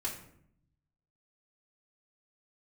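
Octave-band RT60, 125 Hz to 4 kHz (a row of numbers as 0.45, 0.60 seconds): 1.3, 1.1, 0.75, 0.65, 0.55, 0.40 seconds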